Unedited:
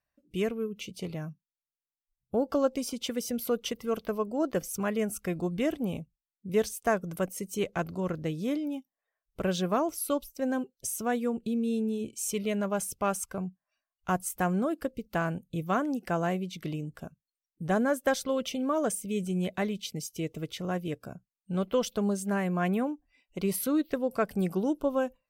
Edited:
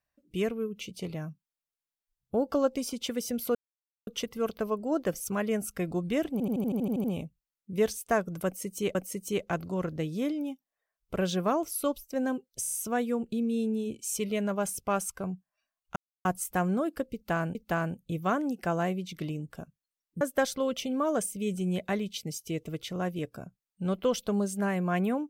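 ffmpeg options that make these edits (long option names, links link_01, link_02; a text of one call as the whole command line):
ffmpeg -i in.wav -filter_complex "[0:a]asplit=19[link_01][link_02][link_03][link_04][link_05][link_06][link_07][link_08][link_09][link_10][link_11][link_12][link_13][link_14][link_15][link_16][link_17][link_18][link_19];[link_01]atrim=end=3.55,asetpts=PTS-STARTPTS,afade=type=out:start_time=3.546:duration=0.004:curve=hsin,apad=pad_dur=0.52[link_20];[link_02]atrim=start=3.55:end=5.882,asetpts=PTS-STARTPTS,afade=type=in:duration=0.004:curve=hsin[link_21];[link_03]atrim=start=5.798:end=5.882[link_22];[link_04]atrim=start=5.798:end=5.882[link_23];[link_05]atrim=start=5.798:end=5.882[link_24];[link_06]atrim=start=5.798:end=5.882[link_25];[link_07]atrim=start=5.798:end=5.882[link_26];[link_08]atrim=start=5.798:end=5.882[link_27];[link_09]atrim=start=5.798:end=5.882[link_28];[link_10]atrim=start=5.798:end=5.882[link_29];[link_11]atrim=start=5.798:end=7.712[link_30];[link_12]atrim=start=7.208:end=10.902[link_31];[link_13]atrim=start=10.868:end=10.902[link_32];[link_14]atrim=start=10.868:end=10.902[link_33];[link_15]atrim=start=10.868:end=10.902[link_34];[link_16]atrim=start=10.868:end=14.1,asetpts=PTS-STARTPTS,afade=type=out:start_time=3.228:duration=0.004:curve=hsin,apad=pad_dur=0.29[link_35];[link_17]atrim=start=14.1:end=15.402,asetpts=PTS-STARTPTS,afade=type=in:duration=0.004:curve=hsin[link_36];[link_18]atrim=start=14.988:end=17.652[link_37];[link_19]atrim=start=17.898[link_38];[link_20][link_21]concat=n=2:v=0:a=1[link_39];[link_39][link_22]acrossfade=duration=0.004:curve1=hsin:curve2=hsin[link_40];[link_40][link_23]acrossfade=duration=0.004:curve1=hsin:curve2=hsin[link_41];[link_41][link_24]acrossfade=duration=0.004:curve1=hsin:curve2=hsin[link_42];[link_42][link_25]acrossfade=duration=0.004:curve1=hsin:curve2=hsin[link_43];[link_43][link_26]acrossfade=duration=0.004:curve1=hsin:curve2=hsin[link_44];[link_44][link_27]acrossfade=duration=0.004:curve1=hsin:curve2=hsin[link_45];[link_45][link_28]acrossfade=duration=0.004:curve1=hsin:curve2=hsin[link_46];[link_46][link_29]acrossfade=duration=0.004:curve1=hsin:curve2=hsin[link_47];[link_47][link_30]acrossfade=duration=0.004:curve1=hsin:curve2=hsin[link_48];[link_48][link_31]acrossfade=duration=0.004:curve1=hsin:curve2=hsin[link_49];[link_49][link_32]acrossfade=duration=0.004:curve1=hsin:curve2=hsin[link_50];[link_50][link_33]acrossfade=duration=0.004:curve1=hsin:curve2=hsin[link_51];[link_51][link_34]acrossfade=duration=0.004:curve1=hsin:curve2=hsin[link_52];[link_35][link_36]concat=n=2:v=0:a=1[link_53];[link_52][link_53]acrossfade=duration=0.004:curve1=hsin:curve2=hsin[link_54];[link_54][link_37]acrossfade=duration=0.004:curve1=hsin:curve2=hsin[link_55];[link_55][link_38]acrossfade=duration=0.004:curve1=hsin:curve2=hsin" out.wav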